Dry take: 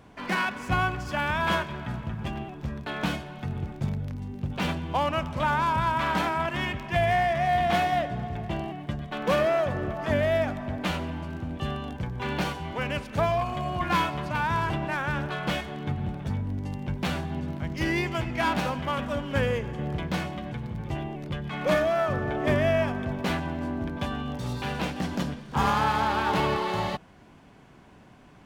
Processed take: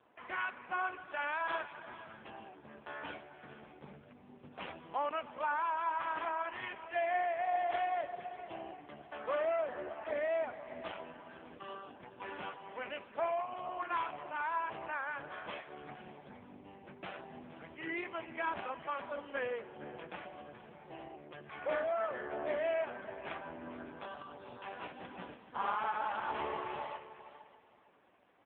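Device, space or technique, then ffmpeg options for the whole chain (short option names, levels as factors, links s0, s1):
satellite phone: -filter_complex "[0:a]asettb=1/sr,asplit=3[s0][s1][s2];[s0]atrim=end=0.994[s3];[s1]atrim=start=0.99:end=2.13,asetpts=PTS-STARTPTS,afade=t=in:d=0.004:c=qsin,afade=t=out:st=1.136:d=0.004:c=qsin,equalizer=f=4500:w=0.96:g=4[s4];[s2]atrim=start=2.126[s5];[s3][s4]acrossfade=d=0.004:c1=hsin:c2=qsin[s6];[s6][s5]acrossfade=d=0.004:c1=qsin:c2=hsin,asplit=3[s7][s8][s9];[s7]afade=t=out:st=19.68:d=0.02[s10];[s8]bandreject=f=2000:w=10,afade=t=in:st=19.68:d=0.02,afade=t=out:st=20.7:d=0.02[s11];[s9]afade=t=in:st=20.7:d=0.02[s12];[s10][s11][s12]amix=inputs=3:normalize=0,highpass=390,lowpass=3100,aecho=1:1:458|916|1374:0.188|0.0471|0.0118,aecho=1:1:593:0.106,volume=0.422" -ar 8000 -c:a libopencore_amrnb -b:a 5150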